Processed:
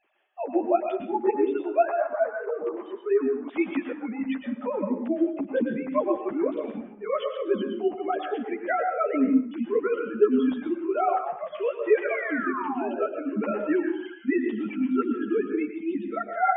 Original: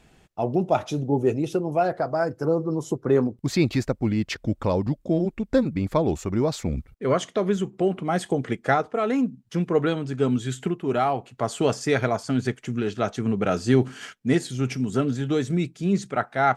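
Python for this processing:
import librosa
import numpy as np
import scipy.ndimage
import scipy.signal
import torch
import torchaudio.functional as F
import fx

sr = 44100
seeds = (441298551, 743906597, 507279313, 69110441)

y = fx.sine_speech(x, sr)
y = fx.low_shelf(y, sr, hz=290.0, db=-10.5, at=(2.11, 4.18), fade=0.02)
y = fx.spec_paint(y, sr, seeds[0], shape='fall', start_s=12.09, length_s=0.97, low_hz=440.0, high_hz=2400.0, level_db=-31.0)
y = fx.rev_plate(y, sr, seeds[1], rt60_s=0.61, hf_ratio=0.65, predelay_ms=95, drr_db=3.5)
y = fx.ensemble(y, sr)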